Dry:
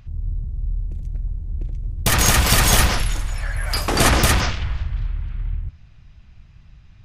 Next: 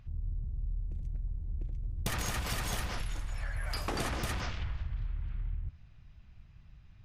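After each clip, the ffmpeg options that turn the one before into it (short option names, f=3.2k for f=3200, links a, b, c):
-af "highshelf=f=4.7k:g=-5.5,acompressor=threshold=-22dB:ratio=10,volume=-8.5dB"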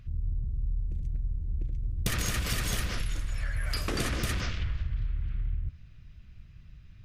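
-af "equalizer=f=840:t=o:w=0.73:g=-12,volume=5dB"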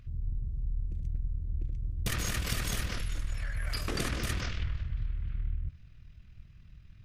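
-af "tremolo=f=40:d=0.519"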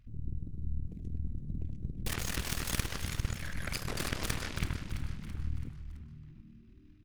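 -filter_complex "[0:a]aeval=exprs='0.133*(cos(1*acos(clip(val(0)/0.133,-1,1)))-cos(1*PI/2))+0.0075*(cos(5*acos(clip(val(0)/0.133,-1,1)))-cos(5*PI/2))+0.0376*(cos(6*acos(clip(val(0)/0.133,-1,1)))-cos(6*PI/2))+0.0335*(cos(7*acos(clip(val(0)/0.133,-1,1)))-cos(7*PI/2))+0.0376*(cos(8*acos(clip(val(0)/0.133,-1,1)))-cos(8*PI/2))':c=same,asplit=6[a][b][c][d][e][f];[b]adelay=332,afreqshift=-76,volume=-9.5dB[g];[c]adelay=664,afreqshift=-152,volume=-16.1dB[h];[d]adelay=996,afreqshift=-228,volume=-22.6dB[i];[e]adelay=1328,afreqshift=-304,volume=-29.2dB[j];[f]adelay=1660,afreqshift=-380,volume=-35.7dB[k];[a][g][h][i][j][k]amix=inputs=6:normalize=0,volume=-2dB"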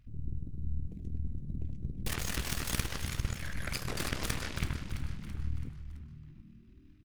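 -filter_complex "[0:a]asplit=2[a][b];[b]adelay=15,volume=-13.5dB[c];[a][c]amix=inputs=2:normalize=0"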